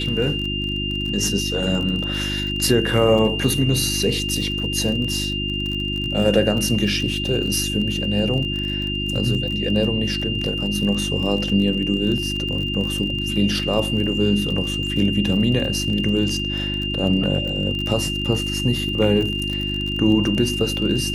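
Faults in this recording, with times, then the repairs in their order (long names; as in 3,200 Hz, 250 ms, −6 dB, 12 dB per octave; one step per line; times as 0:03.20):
surface crackle 32 per second −26 dBFS
mains hum 50 Hz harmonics 7 −27 dBFS
whistle 2,800 Hz −25 dBFS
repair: click removal
hum removal 50 Hz, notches 7
notch filter 2,800 Hz, Q 30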